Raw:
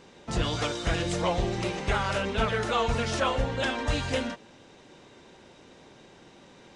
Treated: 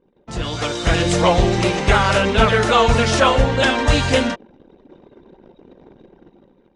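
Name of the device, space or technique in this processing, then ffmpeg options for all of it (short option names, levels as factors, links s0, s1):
voice memo with heavy noise removal: -af "anlmdn=0.0158,dynaudnorm=f=300:g=5:m=4.73"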